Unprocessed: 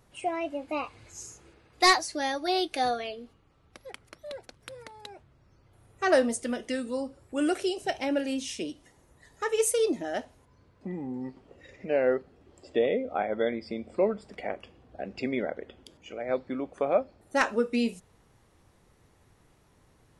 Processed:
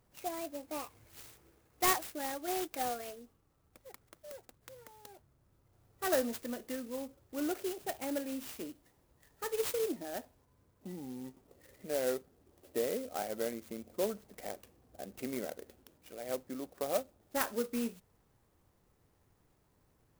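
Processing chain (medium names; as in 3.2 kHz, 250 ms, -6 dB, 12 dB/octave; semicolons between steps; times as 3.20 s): sampling jitter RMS 0.08 ms; trim -8.5 dB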